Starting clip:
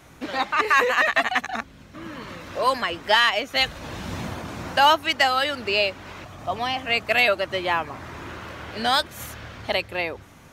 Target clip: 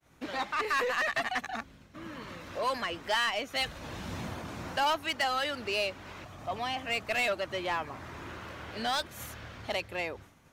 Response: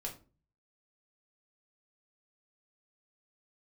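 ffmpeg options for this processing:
-af "agate=range=-33dB:threshold=-42dB:ratio=3:detection=peak,asoftclip=type=tanh:threshold=-15dB,aeval=exprs='0.178*(cos(1*acos(clip(val(0)/0.178,-1,1)))-cos(1*PI/2))+0.00562*(cos(5*acos(clip(val(0)/0.178,-1,1)))-cos(5*PI/2))+0.00112*(cos(6*acos(clip(val(0)/0.178,-1,1)))-cos(6*PI/2))':channel_layout=same,volume=-7.5dB"

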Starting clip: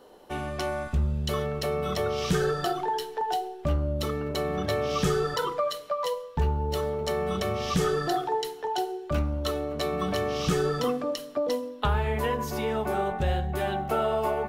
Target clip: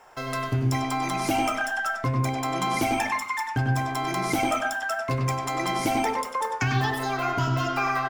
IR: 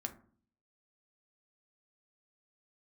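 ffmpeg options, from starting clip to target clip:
-filter_complex "[0:a]asplit=2[link_01][link_02];[link_02]asplit=5[link_03][link_04][link_05][link_06][link_07];[link_03]adelay=166,afreqshift=110,volume=-21dB[link_08];[link_04]adelay=332,afreqshift=220,volume=-25.4dB[link_09];[link_05]adelay=498,afreqshift=330,volume=-29.9dB[link_10];[link_06]adelay=664,afreqshift=440,volume=-34.3dB[link_11];[link_07]adelay=830,afreqshift=550,volume=-38.7dB[link_12];[link_08][link_09][link_10][link_11][link_12]amix=inputs=5:normalize=0[link_13];[link_01][link_13]amix=inputs=2:normalize=0,asetrate=78939,aresample=44100,asplit=2[link_14][link_15];[1:a]atrim=start_sample=2205,lowpass=5700,adelay=98[link_16];[link_15][link_16]afir=irnorm=-1:irlink=0,volume=-3dB[link_17];[link_14][link_17]amix=inputs=2:normalize=0"

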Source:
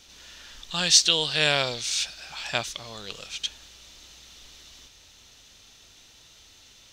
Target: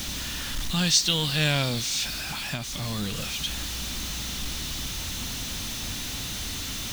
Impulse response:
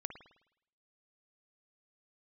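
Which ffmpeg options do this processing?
-filter_complex "[0:a]aeval=exprs='val(0)+0.5*0.0668*sgn(val(0))':channel_layout=same,asettb=1/sr,asplit=3[link_01][link_02][link_03];[link_01]atrim=end=2.204[link_04];[link_02]atrim=start=2.2:end=3.18,asetpts=PTS-STARTPTS,afade=type=in:duration=0.004:curve=qsin,afade=type=out:start_time=0.976:duration=0.004:curve=qsin,acompressor=threshold=-26dB:ratio=6[link_05];[link_03]atrim=start=3.176[link_06];[link_04][link_05]acrossfade=duration=0.004:curve1=hsin:curve2=qsin[link_07];[link_07][link_06]acrossfade=duration=0.004:curve1=qsin:curve2=hsin,lowshelf=frequency=320:width_type=q:width=1.5:gain=8,volume=-5dB"

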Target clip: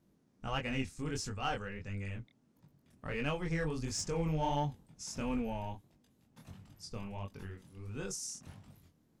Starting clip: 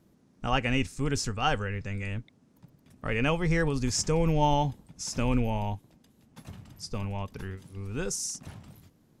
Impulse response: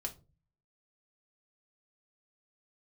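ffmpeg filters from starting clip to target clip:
-filter_complex "[0:a]flanger=delay=20:depth=6:speed=1.5,asplit=2[link_01][link_02];[link_02]asoftclip=type=hard:threshold=-28.5dB,volume=-8dB[link_03];[link_01][link_03]amix=inputs=2:normalize=0,volume=-8dB"

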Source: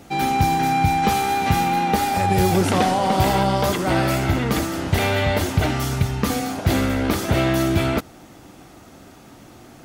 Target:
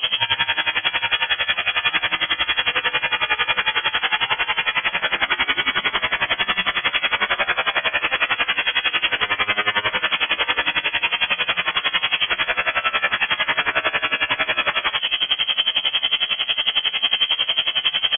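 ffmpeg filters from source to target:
ffmpeg -i in.wav -filter_complex "[0:a]highpass=51,afftfilt=real='re*lt(hypot(re,im),0.158)':imag='im*lt(hypot(re,im),0.158)':win_size=1024:overlap=0.75,adynamicequalizer=threshold=0.00316:dfrequency=260:dqfactor=1.6:tfrequency=260:tqfactor=1.6:attack=5:release=100:ratio=0.375:range=1.5:mode=boostabove:tftype=bell,acompressor=threshold=-33dB:ratio=4,aecho=1:1:93.29|125.4:0.562|0.316,apsyclip=33.5dB,atempo=0.52,acrossover=split=170|2400[link_01][link_02][link_03];[link_01]acompressor=threshold=-22dB:ratio=4[link_04];[link_02]acompressor=threshold=-17dB:ratio=4[link_05];[link_03]acompressor=threshold=-23dB:ratio=4[link_06];[link_04][link_05][link_06]amix=inputs=3:normalize=0,asplit=2[link_07][link_08];[link_08]adelay=14,volume=-6.5dB[link_09];[link_07][link_09]amix=inputs=2:normalize=0,asetrate=45938,aresample=44100,lowpass=frequency=2900:width_type=q:width=0.5098,lowpass=frequency=2900:width_type=q:width=0.6013,lowpass=frequency=2900:width_type=q:width=0.9,lowpass=frequency=2900:width_type=q:width=2.563,afreqshift=-3400,aeval=exprs='val(0)*pow(10,-20*(0.5-0.5*cos(2*PI*11*n/s))/20)':channel_layout=same" out.wav

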